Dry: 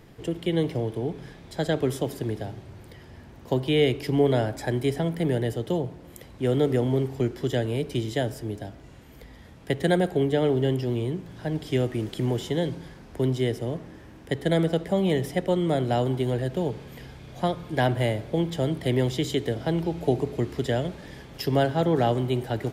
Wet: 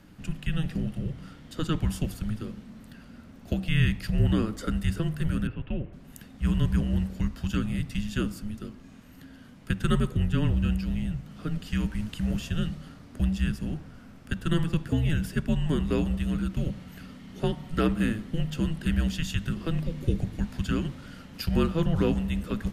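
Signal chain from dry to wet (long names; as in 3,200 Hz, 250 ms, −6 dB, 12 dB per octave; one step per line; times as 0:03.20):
0:05.47–0:05.93: elliptic band-pass filter 240–3,000 Hz, stop band 40 dB
frequency shifter −320 Hz
level −1.5 dB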